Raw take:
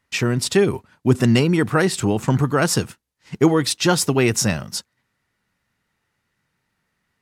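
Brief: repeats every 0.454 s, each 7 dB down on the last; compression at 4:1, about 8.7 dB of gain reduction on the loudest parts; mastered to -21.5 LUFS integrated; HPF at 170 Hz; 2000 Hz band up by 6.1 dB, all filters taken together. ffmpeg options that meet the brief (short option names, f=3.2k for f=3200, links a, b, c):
-af "highpass=170,equalizer=f=2k:t=o:g=8,acompressor=threshold=-21dB:ratio=4,aecho=1:1:454|908|1362|1816|2270:0.447|0.201|0.0905|0.0407|0.0183,volume=3.5dB"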